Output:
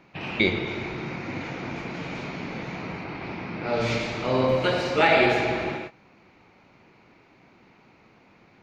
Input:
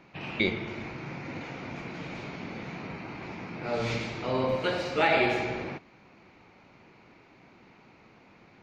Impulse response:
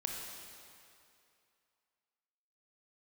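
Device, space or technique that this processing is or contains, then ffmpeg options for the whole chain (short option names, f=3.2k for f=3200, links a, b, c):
keyed gated reverb: -filter_complex "[0:a]asplit=3[a][b][c];[1:a]atrim=start_sample=2205[d];[b][d]afir=irnorm=-1:irlink=0[e];[c]apad=whole_len=380458[f];[e][f]sidechaingate=range=-33dB:threshold=-49dB:ratio=16:detection=peak,volume=-1.5dB[g];[a][g]amix=inputs=2:normalize=0,asettb=1/sr,asplit=3[h][i][j];[h]atrim=end=3.044[k];[i]atrim=start=3.04:end=3.81,asetpts=PTS-STARTPTS,afade=t=in:d=0.004:c=qsin,afade=t=out:st=0.766:d=0.004:c=qsin,lowpass=f=5.4k:w=0.5412,lowpass=f=5.4k:w=1.3066[l];[j]atrim=start=3.806[m];[k][l]acrossfade=d=0.004:c1=hsin:c2=qsin[n];[n][m]acrossfade=d=0.004:c1=qsin:c2=hsin"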